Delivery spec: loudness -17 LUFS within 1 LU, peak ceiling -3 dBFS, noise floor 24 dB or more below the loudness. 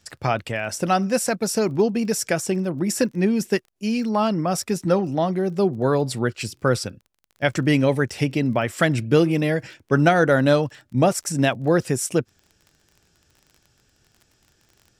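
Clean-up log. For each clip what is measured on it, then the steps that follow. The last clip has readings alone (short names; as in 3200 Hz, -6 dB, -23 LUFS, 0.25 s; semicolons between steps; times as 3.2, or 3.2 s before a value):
ticks 30/s; loudness -22.0 LUFS; peak -5.0 dBFS; loudness target -17.0 LUFS
-> de-click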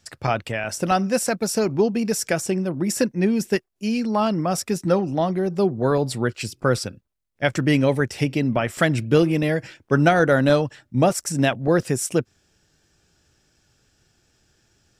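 ticks 0/s; loudness -22.0 LUFS; peak -5.0 dBFS; loudness target -17.0 LUFS
-> gain +5 dB; limiter -3 dBFS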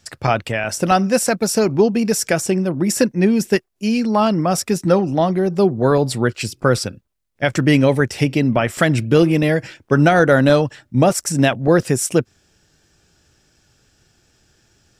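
loudness -17.0 LUFS; peak -3.0 dBFS; noise floor -61 dBFS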